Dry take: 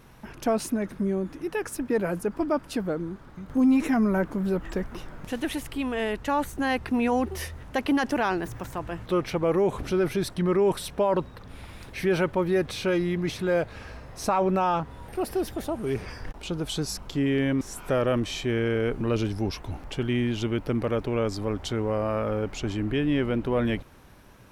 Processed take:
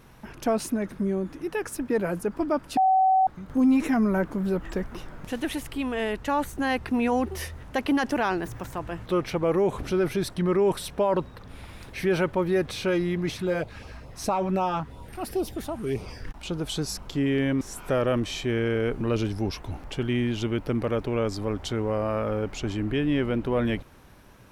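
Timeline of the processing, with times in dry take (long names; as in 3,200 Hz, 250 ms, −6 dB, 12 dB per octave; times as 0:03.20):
0:02.77–0:03.27: beep over 759 Hz −16.5 dBFS
0:13.35–0:16.44: auto-filter notch sine 6.4 Hz → 1.1 Hz 410–1,800 Hz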